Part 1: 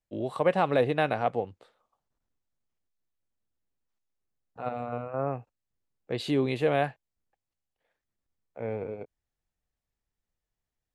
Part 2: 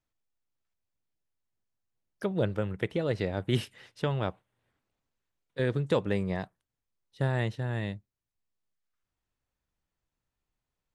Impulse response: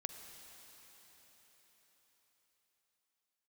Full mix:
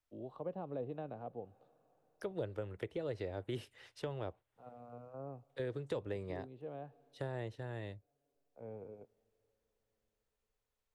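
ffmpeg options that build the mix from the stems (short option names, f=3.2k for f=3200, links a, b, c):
-filter_complex "[0:a]lowpass=2.6k,equalizer=f=2k:w=1.6:g=-13,volume=-15dB,asplit=2[a][b];[b]volume=-16.5dB[c];[1:a]equalizer=f=190:t=o:w=1.2:g=-14.5,volume=-2dB,asplit=2[d][e];[e]apad=whole_len=482844[f];[a][f]sidechaincompress=threshold=-45dB:ratio=3:attack=37:release=820[g];[2:a]atrim=start_sample=2205[h];[c][h]afir=irnorm=-1:irlink=0[i];[g][d][i]amix=inputs=3:normalize=0,acrossover=split=180|600[j][k][l];[j]acompressor=threshold=-48dB:ratio=4[m];[k]acompressor=threshold=-37dB:ratio=4[n];[l]acompressor=threshold=-52dB:ratio=4[o];[m][n][o]amix=inputs=3:normalize=0"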